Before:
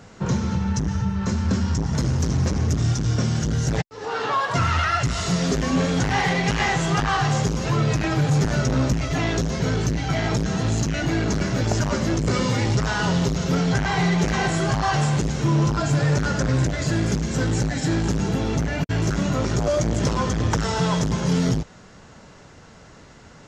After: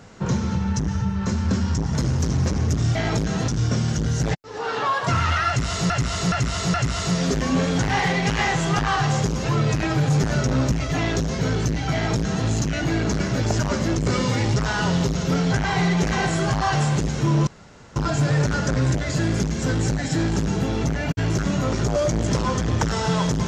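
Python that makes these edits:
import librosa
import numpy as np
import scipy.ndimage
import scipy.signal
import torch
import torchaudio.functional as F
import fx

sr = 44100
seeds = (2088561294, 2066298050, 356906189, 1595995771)

y = fx.edit(x, sr, fx.repeat(start_s=4.95, length_s=0.42, count=4),
    fx.duplicate(start_s=10.14, length_s=0.53, to_s=2.95),
    fx.insert_room_tone(at_s=15.68, length_s=0.49), tone=tone)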